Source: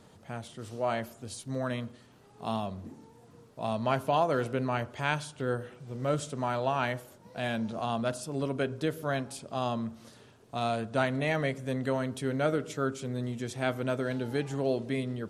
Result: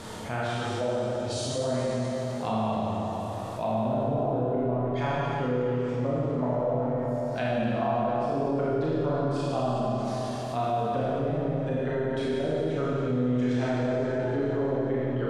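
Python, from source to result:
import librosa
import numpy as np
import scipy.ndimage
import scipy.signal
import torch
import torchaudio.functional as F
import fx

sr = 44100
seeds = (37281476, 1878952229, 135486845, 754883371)

y = fx.dereverb_blind(x, sr, rt60_s=0.97)
y = fx.env_lowpass_down(y, sr, base_hz=300.0, full_db=-27.0)
y = fx.peak_eq(y, sr, hz=180.0, db=-5.0, octaves=2.2)
y = fx.rev_schroeder(y, sr, rt60_s=3.1, comb_ms=25, drr_db=-9.5)
y = fx.env_flatten(y, sr, amount_pct=50)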